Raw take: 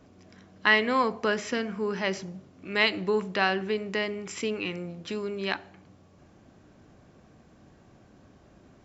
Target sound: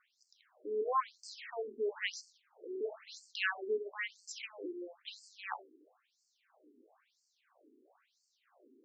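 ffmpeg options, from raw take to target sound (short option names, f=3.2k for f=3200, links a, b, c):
-filter_complex "[0:a]acrusher=bits=4:mode=log:mix=0:aa=0.000001,asettb=1/sr,asplit=3[a][b][c];[a]atrim=end=2.304[d];[b]atrim=start=2.3:end=2.81,asetpts=PTS-STARTPTS,afade=t=in:d=0.004:c=qsin,afade=t=out:st=0.506:d=0.004:c=qsin,afreqshift=170[e];[c]atrim=start=2.806[f];[d][e]acrossfade=d=0.004:c1=hsin:c2=qsin[g];[g][f]acrossfade=d=0.004:c1=qsin:c2=hsin,afftfilt=real='re*between(b*sr/1024,310*pow(6200/310,0.5+0.5*sin(2*PI*1*pts/sr))/1.41,310*pow(6200/310,0.5+0.5*sin(2*PI*1*pts/sr))*1.41)':imag='im*between(b*sr/1024,310*pow(6200/310,0.5+0.5*sin(2*PI*1*pts/sr))/1.41,310*pow(6200/310,0.5+0.5*sin(2*PI*1*pts/sr))*1.41)':win_size=1024:overlap=0.75,volume=-3.5dB"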